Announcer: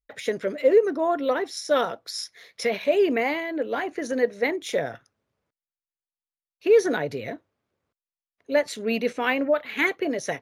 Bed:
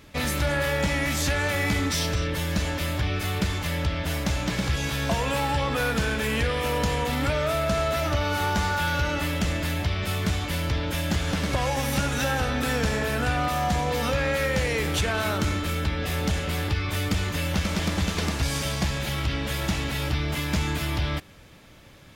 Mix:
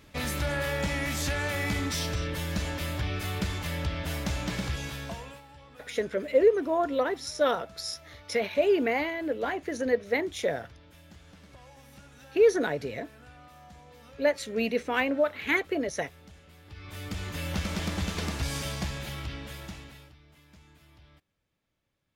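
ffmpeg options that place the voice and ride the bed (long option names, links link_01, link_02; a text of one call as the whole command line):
ffmpeg -i stem1.wav -i stem2.wav -filter_complex "[0:a]adelay=5700,volume=-3dB[link_01];[1:a]volume=16dB,afade=type=out:start_time=4.55:duration=0.87:silence=0.0841395,afade=type=in:start_time=16.65:duration=0.92:silence=0.0891251,afade=type=out:start_time=18.6:duration=1.54:silence=0.0562341[link_02];[link_01][link_02]amix=inputs=2:normalize=0" out.wav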